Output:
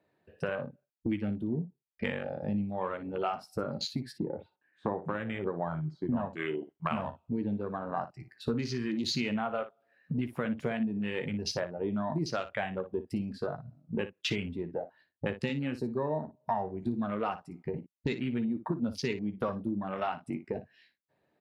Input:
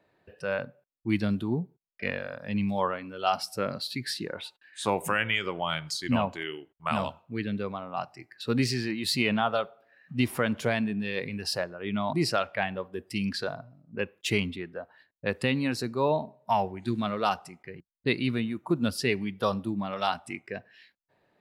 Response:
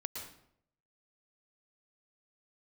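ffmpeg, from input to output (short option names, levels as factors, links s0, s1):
-filter_complex "[0:a]asplit=3[s0][s1][s2];[s0]afade=t=out:st=4.11:d=0.02[s3];[s1]lowpass=1100,afade=t=in:st=4.11:d=0.02,afade=t=out:st=6.15:d=0.02[s4];[s2]afade=t=in:st=6.15:d=0.02[s5];[s3][s4][s5]amix=inputs=3:normalize=0,afwtdn=0.0178,highpass=f=140:p=1,lowshelf=f=340:g=7.5,acompressor=threshold=0.01:ratio=5,aecho=1:1:13|58:0.316|0.237,volume=2.66"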